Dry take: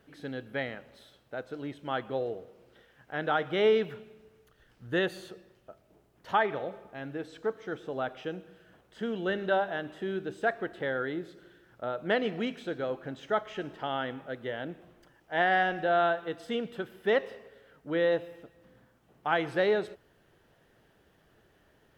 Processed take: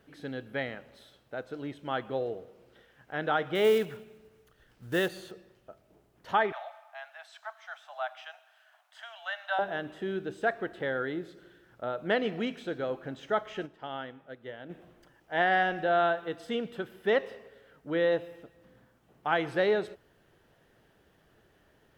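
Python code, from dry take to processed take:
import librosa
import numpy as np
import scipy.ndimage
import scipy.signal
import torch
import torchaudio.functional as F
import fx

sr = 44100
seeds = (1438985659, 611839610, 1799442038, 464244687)

y = fx.block_float(x, sr, bits=5, at=(3.55, 5.32))
y = fx.steep_highpass(y, sr, hz=630.0, slope=96, at=(6.52, 9.59))
y = fx.upward_expand(y, sr, threshold_db=-42.0, expansion=1.5, at=(13.65, 14.69), fade=0.02)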